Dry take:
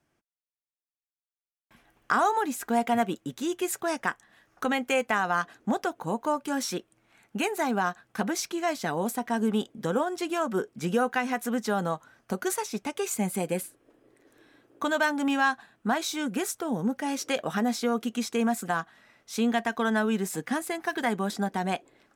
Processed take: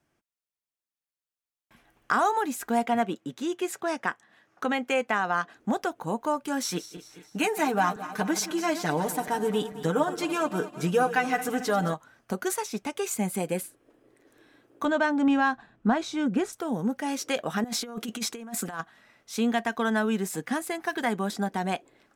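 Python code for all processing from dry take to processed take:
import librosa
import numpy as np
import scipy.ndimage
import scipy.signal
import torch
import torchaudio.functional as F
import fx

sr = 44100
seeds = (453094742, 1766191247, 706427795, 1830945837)

y = fx.chain(x, sr, fx.highpass(hz=140.0, slope=12),
    fx.high_shelf(hz=8300.0, db=-11.0), at=(2.86, 5.57))
y = fx.chain(y, sr, fx.reverse_delay_fb(ms=110, feedback_pct=68, wet_db=-13.0),
    fx.comb(ms=6.6, depth=0.74), at=(6.64, 11.94))
y = fx.chain(y, sr, fx.lowpass(hz=8100.0, slope=12),
    fx.tilt_eq(slope=-2.5), at=(14.85, 16.53))
y = fx.chain(y, sr, fx.low_shelf(hz=110.0, db=-6.5),
    fx.over_compress(threshold_db=-32.0, ratio=-0.5), at=(17.64, 18.81))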